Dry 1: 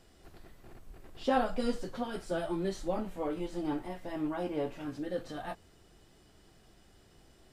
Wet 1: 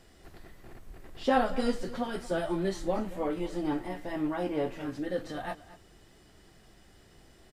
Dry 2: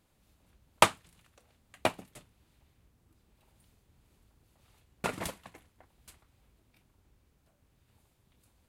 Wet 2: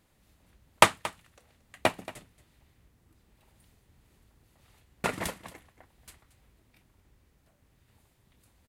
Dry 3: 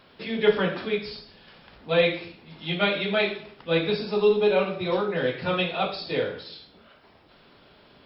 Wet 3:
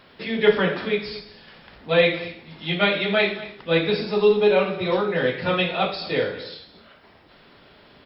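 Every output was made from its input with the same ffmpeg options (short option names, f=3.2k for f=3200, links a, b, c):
-af "equalizer=f=1.9k:t=o:w=0.29:g=4.5,aecho=1:1:228:0.141,volume=3dB"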